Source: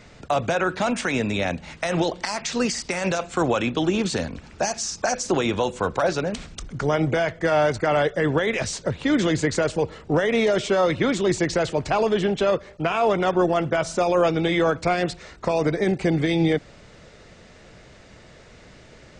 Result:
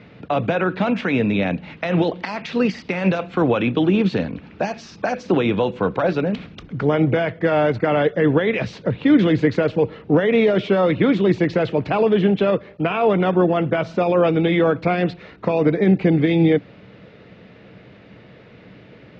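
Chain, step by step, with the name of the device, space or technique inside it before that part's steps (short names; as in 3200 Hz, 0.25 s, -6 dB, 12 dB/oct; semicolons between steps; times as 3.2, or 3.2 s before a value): guitar cabinet (speaker cabinet 81–3700 Hz, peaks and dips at 120 Hz +7 dB, 190 Hz +9 dB, 290 Hz +7 dB, 460 Hz +5 dB, 2500 Hz +3 dB)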